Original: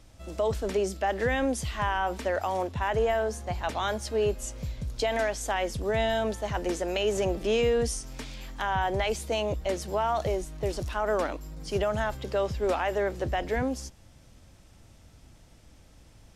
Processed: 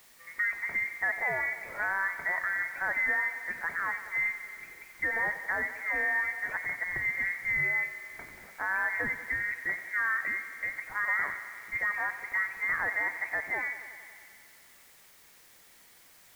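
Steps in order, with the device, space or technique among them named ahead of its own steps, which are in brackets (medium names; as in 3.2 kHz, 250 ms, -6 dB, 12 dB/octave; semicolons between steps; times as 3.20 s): scrambled radio voice (band-pass 390–3200 Hz; frequency inversion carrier 2.5 kHz; white noise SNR 25 dB); thinning echo 92 ms, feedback 77%, high-pass 160 Hz, level -13 dB; trim -2 dB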